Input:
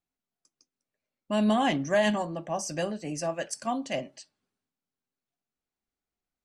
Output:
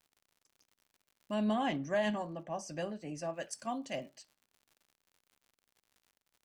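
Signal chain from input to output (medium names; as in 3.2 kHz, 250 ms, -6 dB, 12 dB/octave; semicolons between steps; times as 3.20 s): crackle 100 per s -46 dBFS; 1.34–3.40 s: treble shelf 5.7 kHz -9 dB; trim -7.5 dB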